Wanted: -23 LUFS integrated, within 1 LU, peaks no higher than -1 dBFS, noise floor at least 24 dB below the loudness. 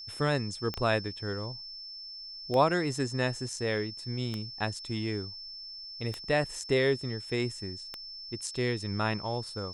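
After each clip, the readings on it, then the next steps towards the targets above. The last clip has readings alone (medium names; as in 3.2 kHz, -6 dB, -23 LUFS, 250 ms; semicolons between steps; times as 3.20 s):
clicks found 5; steady tone 5.3 kHz; tone level -41 dBFS; loudness -32.0 LUFS; peak level -11.5 dBFS; loudness target -23.0 LUFS
-> de-click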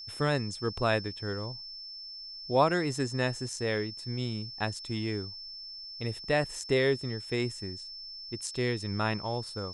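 clicks found 0; steady tone 5.3 kHz; tone level -41 dBFS
-> band-stop 5.3 kHz, Q 30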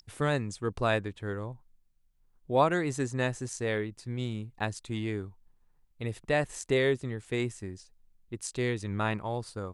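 steady tone not found; loudness -31.5 LUFS; peak level -11.5 dBFS; loudness target -23.0 LUFS
-> trim +8.5 dB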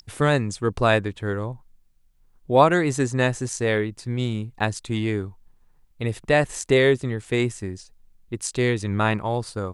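loudness -23.0 LUFS; peak level -3.0 dBFS; noise floor -59 dBFS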